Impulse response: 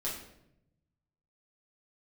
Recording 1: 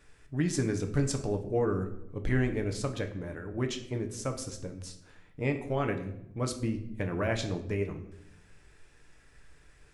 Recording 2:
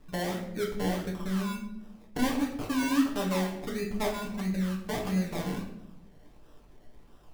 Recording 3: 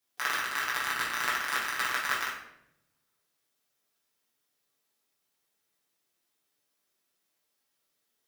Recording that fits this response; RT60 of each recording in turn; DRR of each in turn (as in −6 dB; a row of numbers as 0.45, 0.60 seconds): 3; 0.80, 0.80, 0.80 seconds; 4.5, −1.5, −7.0 decibels